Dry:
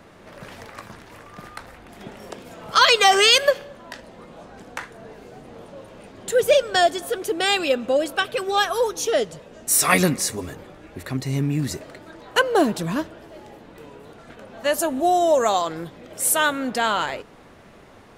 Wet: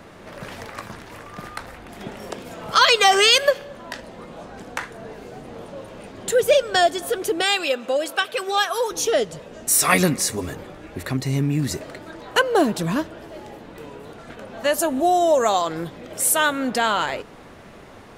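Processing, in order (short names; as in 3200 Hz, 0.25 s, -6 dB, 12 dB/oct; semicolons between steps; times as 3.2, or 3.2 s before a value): 7.42–8.91 HPF 620 Hz 6 dB/oct; in parallel at -0.5 dB: compressor, threshold -27 dBFS, peak gain reduction 16 dB; on the sum: gain -1.5 dB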